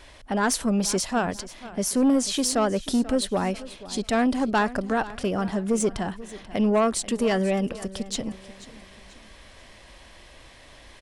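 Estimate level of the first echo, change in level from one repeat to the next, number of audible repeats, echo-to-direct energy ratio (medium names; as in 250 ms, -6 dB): -17.0 dB, -8.5 dB, 3, -16.5 dB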